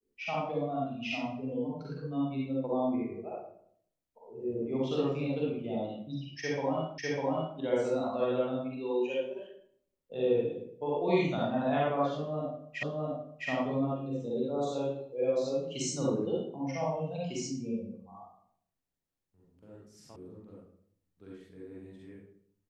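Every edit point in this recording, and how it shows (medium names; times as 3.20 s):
6.98 s: repeat of the last 0.6 s
12.83 s: repeat of the last 0.66 s
20.16 s: sound stops dead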